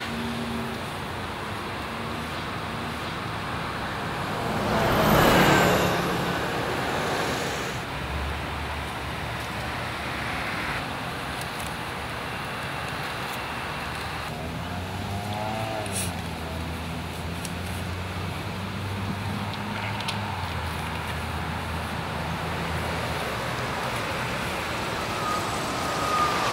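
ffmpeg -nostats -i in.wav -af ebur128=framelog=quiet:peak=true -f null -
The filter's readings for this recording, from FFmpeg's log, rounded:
Integrated loudness:
  I:         -27.9 LUFS
  Threshold: -37.9 LUFS
Loudness range:
  LRA:         8.5 LU
  Threshold: -47.9 LUFS
  LRA low:   -31.0 LUFS
  LRA high:  -22.5 LUFS
True peak:
  Peak:       -5.5 dBFS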